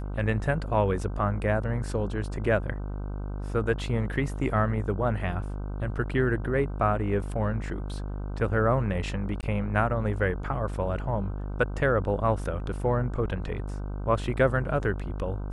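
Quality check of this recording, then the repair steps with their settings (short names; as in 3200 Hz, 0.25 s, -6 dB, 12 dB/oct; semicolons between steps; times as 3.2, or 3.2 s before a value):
buzz 50 Hz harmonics 31 -33 dBFS
9.41–9.43 gap 18 ms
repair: de-hum 50 Hz, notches 31; interpolate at 9.41, 18 ms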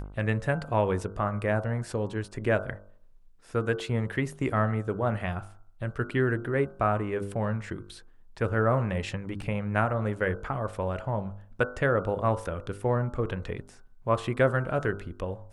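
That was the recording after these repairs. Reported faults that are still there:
none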